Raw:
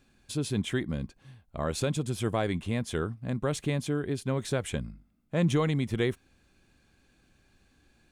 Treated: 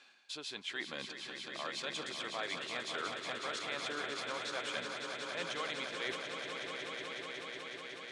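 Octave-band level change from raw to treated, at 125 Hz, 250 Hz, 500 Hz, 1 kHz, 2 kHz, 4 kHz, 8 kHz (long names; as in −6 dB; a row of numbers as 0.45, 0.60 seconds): −28.5, −18.5, −10.5, −2.5, +1.5, +2.5, −6.5 decibels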